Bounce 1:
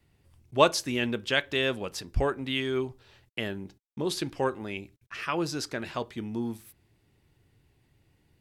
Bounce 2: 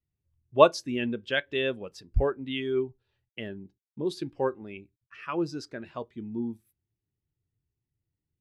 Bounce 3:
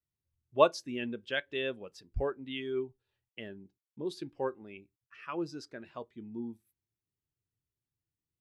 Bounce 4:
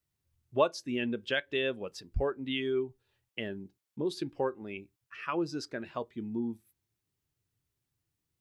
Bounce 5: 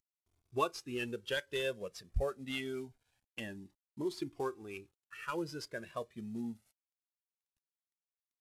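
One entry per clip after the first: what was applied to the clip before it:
every bin expanded away from the loudest bin 1.5 to 1; level +2 dB
low-shelf EQ 150 Hz −6 dB; level −5.5 dB
downward compressor 2 to 1, threshold −38 dBFS, peak gain reduction 12 dB; level +7.5 dB
variable-slope delta modulation 64 kbit/s; flanger whose copies keep moving one way rising 0.25 Hz

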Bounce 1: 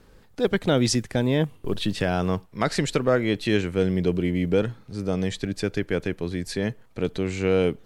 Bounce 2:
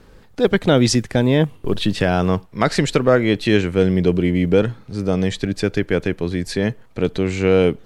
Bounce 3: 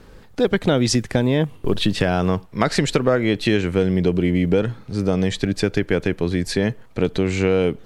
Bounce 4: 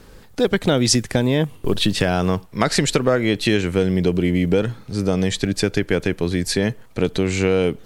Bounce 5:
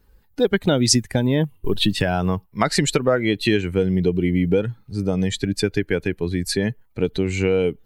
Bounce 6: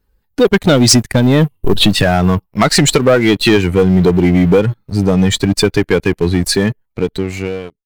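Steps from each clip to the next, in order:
high-shelf EQ 7,000 Hz −5 dB; level +6.5 dB
downward compressor 4 to 1, threshold −16 dBFS, peak gain reduction 6.5 dB; level +2 dB
high-shelf EQ 5,100 Hz +9 dB
spectral dynamics exaggerated over time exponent 1.5; level +1.5 dB
fade-out on the ending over 1.60 s; leveller curve on the samples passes 3

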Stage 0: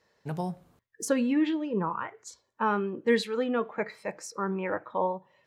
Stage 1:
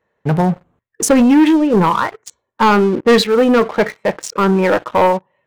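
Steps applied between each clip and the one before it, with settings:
adaptive Wiener filter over 9 samples
leveller curve on the samples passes 3
level +8 dB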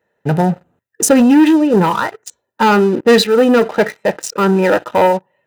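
high-shelf EQ 8,300 Hz +6 dB
notch comb filter 1,100 Hz
level +1.5 dB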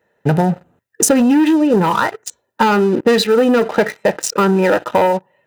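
downward compressor, threshold −14 dBFS, peak gain reduction 8.5 dB
level +4 dB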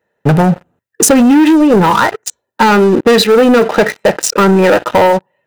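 leveller curve on the samples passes 2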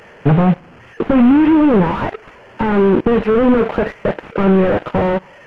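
linear delta modulator 16 kbit/s, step −24.5 dBFS
power curve on the samples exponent 1.4

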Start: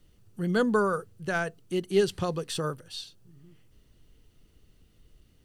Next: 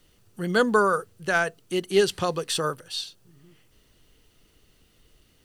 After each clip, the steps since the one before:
low-shelf EQ 320 Hz −11 dB
level +7.5 dB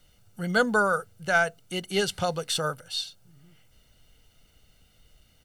comb filter 1.4 ms, depth 57%
level −2 dB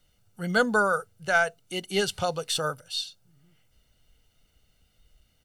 noise reduction from a noise print of the clip's start 6 dB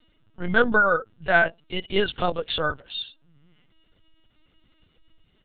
linear-prediction vocoder at 8 kHz pitch kept
level +4 dB

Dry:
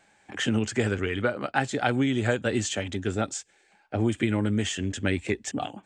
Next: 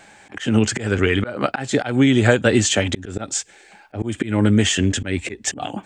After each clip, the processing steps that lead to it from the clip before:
in parallel at +1.5 dB: downward compressor, threshold −34 dBFS, peak gain reduction 14.5 dB
on the sum: volume swells 204 ms
level +8 dB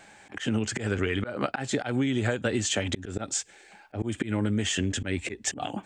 downward compressor 6 to 1, threshold −18 dBFS, peak gain reduction 9 dB
level −5 dB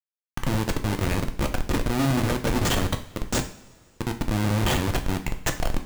comparator with hysteresis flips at −24.5 dBFS
coupled-rooms reverb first 0.44 s, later 2.4 s, from −20 dB, DRR 5 dB
level +7 dB

